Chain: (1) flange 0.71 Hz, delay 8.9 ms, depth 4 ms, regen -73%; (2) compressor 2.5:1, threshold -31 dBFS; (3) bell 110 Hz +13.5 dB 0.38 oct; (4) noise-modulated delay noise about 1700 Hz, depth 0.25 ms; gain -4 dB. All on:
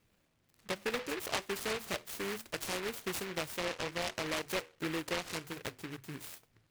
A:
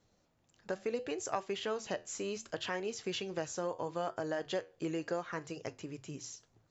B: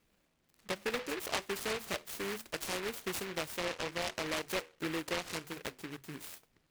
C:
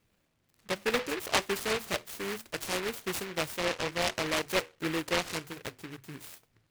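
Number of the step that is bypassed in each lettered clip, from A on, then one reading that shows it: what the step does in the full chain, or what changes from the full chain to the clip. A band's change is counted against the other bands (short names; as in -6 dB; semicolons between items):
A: 4, 2 kHz band -5.5 dB; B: 3, 125 Hz band -1.5 dB; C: 2, mean gain reduction 3.5 dB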